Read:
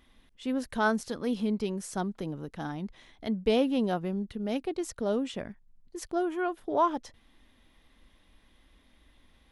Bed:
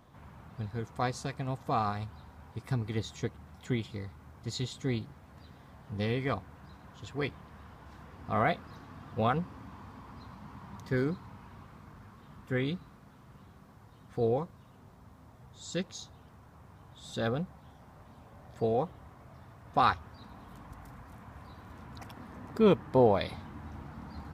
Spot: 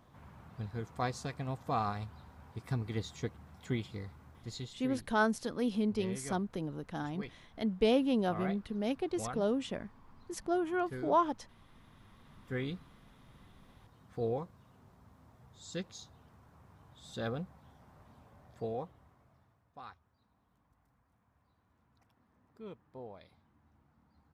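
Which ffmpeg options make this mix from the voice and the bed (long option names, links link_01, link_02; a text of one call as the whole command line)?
ffmpeg -i stem1.wav -i stem2.wav -filter_complex "[0:a]adelay=4350,volume=-2.5dB[link_01];[1:a]volume=4dB,afade=type=out:start_time=4.14:duration=0.73:silence=0.334965,afade=type=in:start_time=11.59:duration=1:silence=0.446684,afade=type=out:start_time=18.12:duration=1.62:silence=0.112202[link_02];[link_01][link_02]amix=inputs=2:normalize=0" out.wav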